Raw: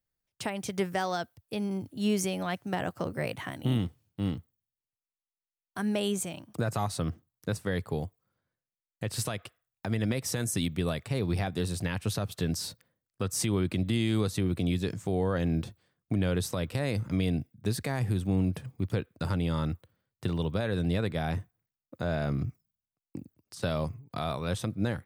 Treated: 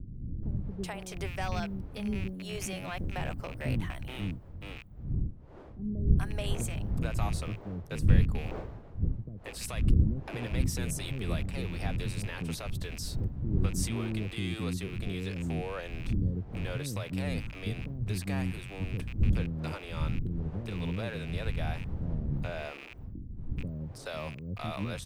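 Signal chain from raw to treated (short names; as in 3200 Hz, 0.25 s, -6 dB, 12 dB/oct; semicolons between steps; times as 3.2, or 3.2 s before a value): rattling part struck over -40 dBFS, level -29 dBFS; wind noise 110 Hz -28 dBFS; bands offset in time lows, highs 0.43 s, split 380 Hz; gain -5 dB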